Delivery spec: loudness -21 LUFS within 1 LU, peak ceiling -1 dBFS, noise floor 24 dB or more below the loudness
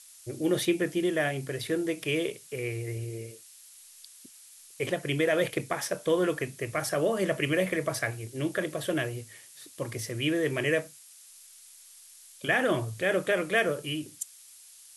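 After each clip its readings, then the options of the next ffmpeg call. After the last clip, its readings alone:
noise floor -53 dBFS; noise floor target -54 dBFS; loudness -29.5 LUFS; peak -14.0 dBFS; loudness target -21.0 LUFS
-> -af "afftdn=nr=6:nf=-53"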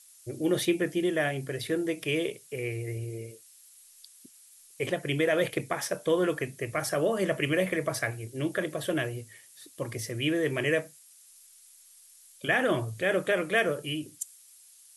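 noise floor -56 dBFS; loudness -29.5 LUFS; peak -14.0 dBFS; loudness target -21.0 LUFS
-> -af "volume=8.5dB"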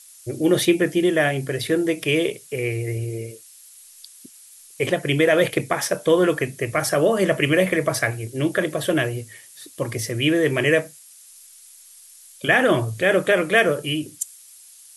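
loudness -21.0 LUFS; peak -5.5 dBFS; noise floor -47 dBFS

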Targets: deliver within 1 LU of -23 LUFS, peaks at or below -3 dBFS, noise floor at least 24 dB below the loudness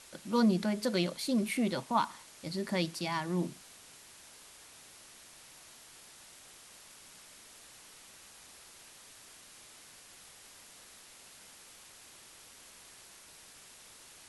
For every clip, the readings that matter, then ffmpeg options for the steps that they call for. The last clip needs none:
noise floor -55 dBFS; noise floor target -57 dBFS; loudness -32.5 LUFS; peak -17.0 dBFS; loudness target -23.0 LUFS
-> -af "afftdn=nr=6:nf=-55"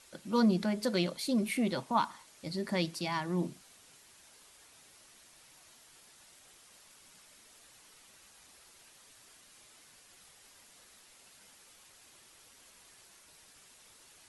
noise floor -60 dBFS; loudness -32.5 LUFS; peak -17.0 dBFS; loudness target -23.0 LUFS
-> -af "volume=9.5dB"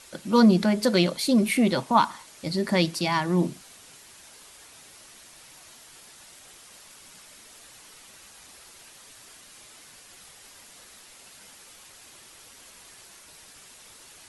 loudness -23.0 LUFS; peak -7.5 dBFS; noise floor -50 dBFS

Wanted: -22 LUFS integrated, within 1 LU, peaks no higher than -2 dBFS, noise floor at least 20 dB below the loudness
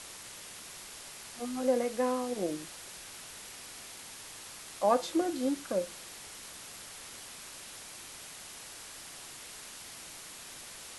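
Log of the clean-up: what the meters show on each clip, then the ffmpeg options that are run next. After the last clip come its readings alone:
noise floor -48 dBFS; noise floor target -57 dBFS; loudness -37.0 LUFS; peak -13.5 dBFS; loudness target -22.0 LUFS
-> -af "afftdn=nr=9:nf=-48"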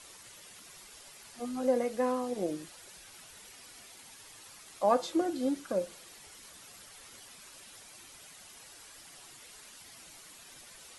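noise floor -53 dBFS; loudness -32.0 LUFS; peak -13.5 dBFS; loudness target -22.0 LUFS
-> -af "volume=10dB"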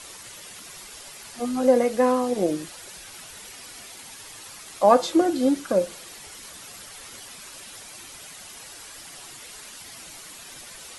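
loudness -22.0 LUFS; peak -3.5 dBFS; noise floor -43 dBFS

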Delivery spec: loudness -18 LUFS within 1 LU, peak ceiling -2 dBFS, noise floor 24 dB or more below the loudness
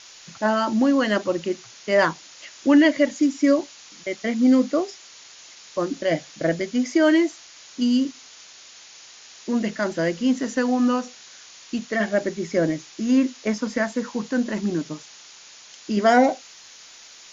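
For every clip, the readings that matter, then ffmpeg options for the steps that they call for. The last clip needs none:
noise floor -46 dBFS; noise floor target -47 dBFS; loudness -22.5 LUFS; peak -4.5 dBFS; loudness target -18.0 LUFS
-> -af "afftdn=nr=6:nf=-46"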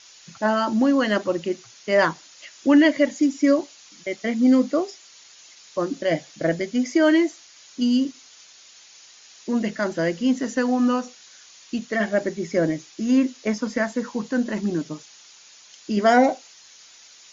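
noise floor -49 dBFS; loudness -22.5 LUFS; peak -4.5 dBFS; loudness target -18.0 LUFS
-> -af "volume=4.5dB,alimiter=limit=-2dB:level=0:latency=1"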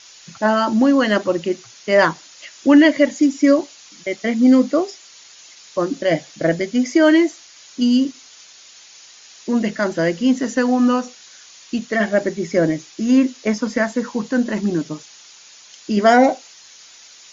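loudness -18.0 LUFS; peak -2.0 dBFS; noise floor -45 dBFS

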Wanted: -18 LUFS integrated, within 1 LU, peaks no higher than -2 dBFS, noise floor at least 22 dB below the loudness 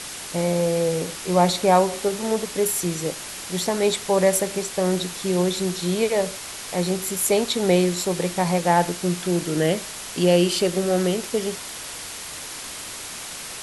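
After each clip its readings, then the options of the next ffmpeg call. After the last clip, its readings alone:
noise floor -35 dBFS; noise floor target -45 dBFS; loudness -23.0 LUFS; peak -5.0 dBFS; loudness target -18.0 LUFS
-> -af "afftdn=nr=10:nf=-35"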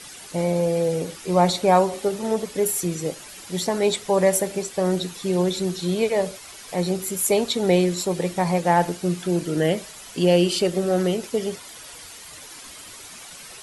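noise floor -42 dBFS; noise floor target -45 dBFS
-> -af "afftdn=nr=6:nf=-42"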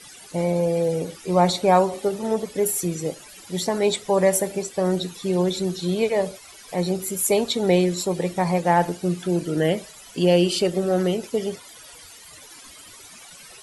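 noise floor -45 dBFS; loudness -22.5 LUFS; peak -5.5 dBFS; loudness target -18.0 LUFS
-> -af "volume=4.5dB,alimiter=limit=-2dB:level=0:latency=1"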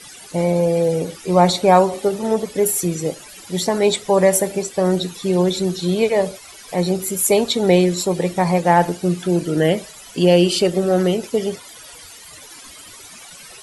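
loudness -18.0 LUFS; peak -2.0 dBFS; noise floor -41 dBFS

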